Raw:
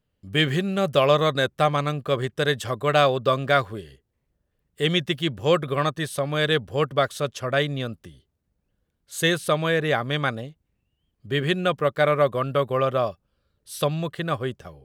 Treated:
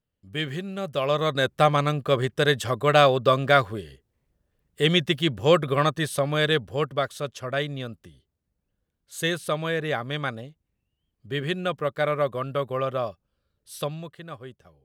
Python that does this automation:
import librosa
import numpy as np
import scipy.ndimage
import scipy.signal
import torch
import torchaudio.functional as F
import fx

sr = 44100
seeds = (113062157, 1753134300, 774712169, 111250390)

y = fx.gain(x, sr, db=fx.line((0.94, -8.0), (1.56, 1.5), (6.21, 1.5), (7.05, -4.5), (13.77, -4.5), (14.2, -13.0)))